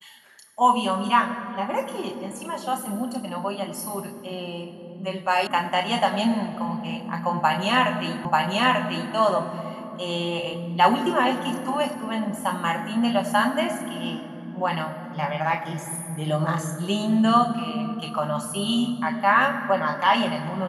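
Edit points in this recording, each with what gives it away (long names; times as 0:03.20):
0:05.47: cut off before it has died away
0:08.25: the same again, the last 0.89 s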